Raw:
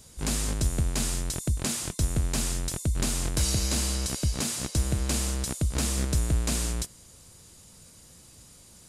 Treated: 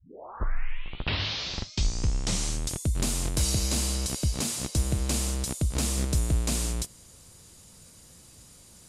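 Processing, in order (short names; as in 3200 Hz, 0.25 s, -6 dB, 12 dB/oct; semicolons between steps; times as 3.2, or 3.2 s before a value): tape start at the beginning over 2.89 s; dynamic EQ 1600 Hz, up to -4 dB, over -51 dBFS, Q 2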